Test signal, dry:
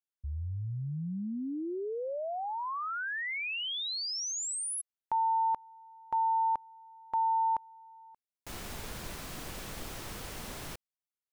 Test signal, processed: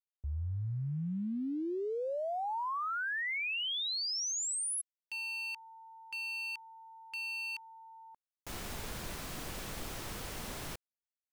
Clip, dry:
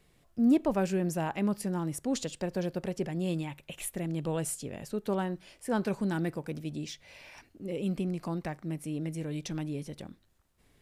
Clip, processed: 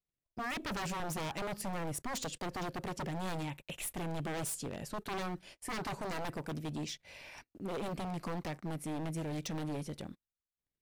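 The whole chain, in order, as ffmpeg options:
-af "agate=range=0.0224:threshold=0.00178:ratio=3:release=27:detection=rms,aeval=exprs='0.0237*(abs(mod(val(0)/0.0237+3,4)-2)-1)':c=same"

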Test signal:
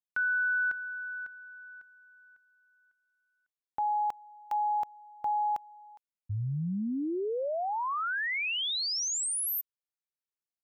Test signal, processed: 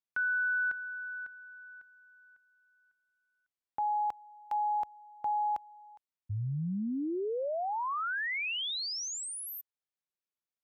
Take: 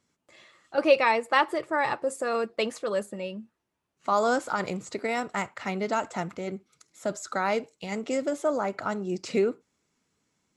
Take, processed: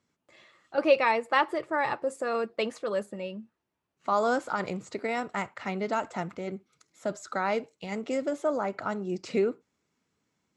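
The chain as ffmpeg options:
-af "highpass=46,highshelf=f=7000:g=-10,volume=0.841"

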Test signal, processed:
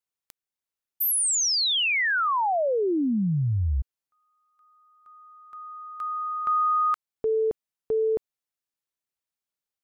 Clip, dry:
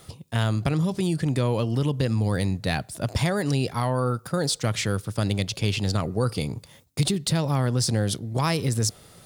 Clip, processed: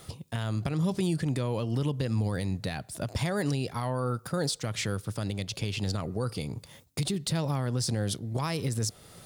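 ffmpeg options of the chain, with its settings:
-af "alimiter=limit=0.106:level=0:latency=1:release=316"

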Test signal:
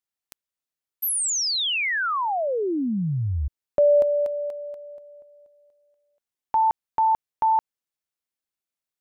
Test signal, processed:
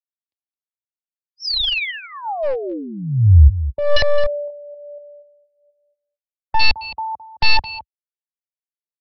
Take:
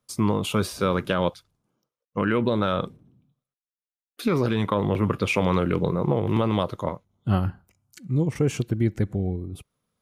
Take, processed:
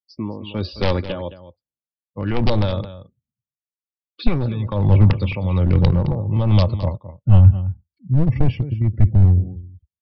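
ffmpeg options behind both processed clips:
-filter_complex "[0:a]highpass=f=59:w=0.5412,highpass=f=59:w=1.3066,tremolo=f=1.2:d=0.7,aecho=1:1:3.5:0.37,acrossover=split=200[s0][s1];[s1]aeval=exprs='(mod(5.01*val(0)+1,2)-1)/5.01':c=same[s2];[s0][s2]amix=inputs=2:normalize=0,afftdn=nr=33:nf=-42,asplit=2[s3][s4];[s4]adelay=215.7,volume=0.2,highshelf=f=4000:g=-4.85[s5];[s3][s5]amix=inputs=2:normalize=0,dynaudnorm=f=120:g=7:m=2,equalizer=f=1400:t=o:w=0.75:g=-12.5,aresample=11025,aeval=exprs='clip(val(0),-1,0.15)':c=same,aresample=44100,asubboost=boost=12:cutoff=87"

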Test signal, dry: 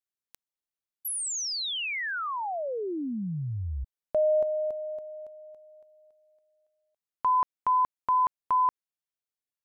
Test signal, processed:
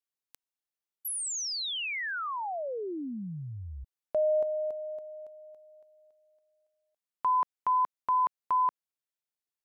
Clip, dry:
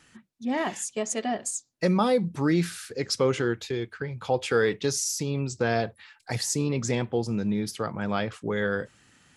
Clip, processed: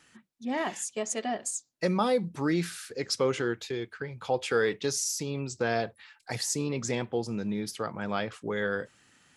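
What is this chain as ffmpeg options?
-af "lowshelf=f=170:g=-7.5,volume=0.794"

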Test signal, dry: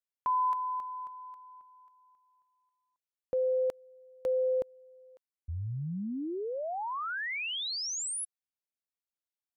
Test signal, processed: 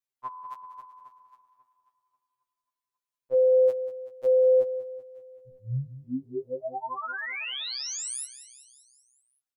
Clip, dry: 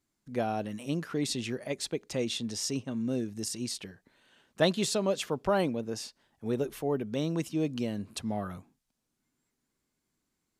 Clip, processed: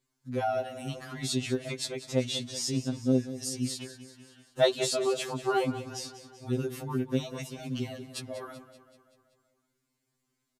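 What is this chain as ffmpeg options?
-af "aecho=1:1:191|382|573|764|955|1146:0.2|0.114|0.0648|0.037|0.0211|0.012,afftfilt=real='re*2.45*eq(mod(b,6),0)':imag='im*2.45*eq(mod(b,6),0)':win_size=2048:overlap=0.75,volume=1.41"

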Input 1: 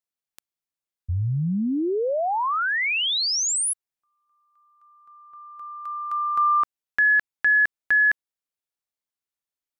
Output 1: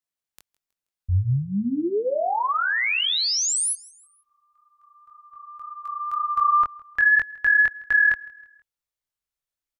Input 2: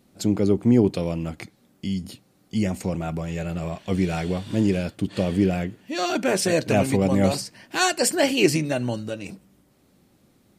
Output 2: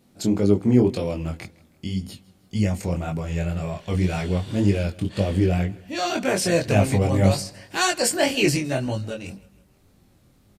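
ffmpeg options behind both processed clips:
-af "asubboost=boost=3.5:cutoff=110,flanger=delay=19.5:depth=4.2:speed=1.9,aecho=1:1:160|320|480:0.0708|0.0319|0.0143,volume=1.5"

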